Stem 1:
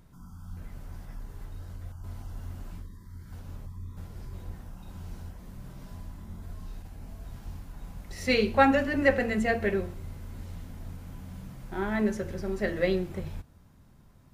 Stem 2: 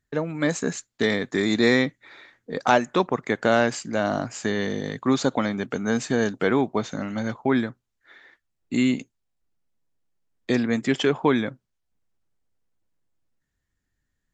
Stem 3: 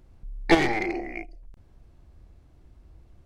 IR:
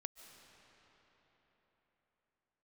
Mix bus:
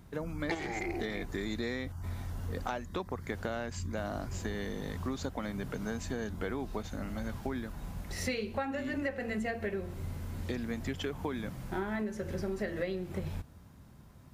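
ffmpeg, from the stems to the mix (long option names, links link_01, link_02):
-filter_complex "[0:a]volume=3dB[link_01];[1:a]volume=-10dB[link_02];[2:a]volume=-3.5dB[link_03];[link_01][link_02][link_03]amix=inputs=3:normalize=0,highpass=42,acompressor=threshold=-31dB:ratio=16"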